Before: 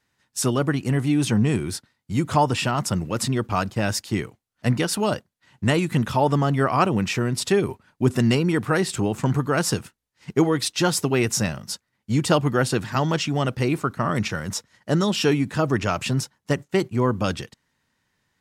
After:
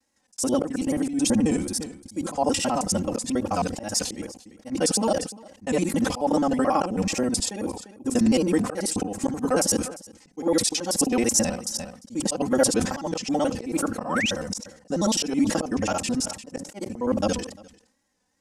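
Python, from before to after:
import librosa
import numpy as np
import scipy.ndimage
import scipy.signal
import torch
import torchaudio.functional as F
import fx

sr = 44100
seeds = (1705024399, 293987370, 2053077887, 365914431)

p1 = fx.local_reverse(x, sr, ms=54.0)
p2 = scipy.signal.sosfilt(scipy.signal.butter(4, 11000.0, 'lowpass', fs=sr, output='sos'), p1)
p3 = fx.low_shelf(p2, sr, hz=250.0, db=-9.5)
p4 = p3 + 0.92 * np.pad(p3, (int(3.8 * sr / 1000.0), 0))[:len(p3)]
p5 = fx.vibrato(p4, sr, rate_hz=2.4, depth_cents=87.0)
p6 = fx.band_shelf(p5, sr, hz=2100.0, db=-10.5, octaves=2.3)
p7 = p6 + fx.echo_single(p6, sr, ms=349, db=-23.5, dry=0)
p8 = fx.spec_paint(p7, sr, seeds[0], shape='rise', start_s=14.05, length_s=0.26, low_hz=620.0, high_hz=3800.0, level_db=-28.0)
p9 = fx.auto_swell(p8, sr, attack_ms=187.0)
p10 = fx.sustainer(p9, sr, db_per_s=92.0)
y = p10 * 10.0 ** (2.0 / 20.0)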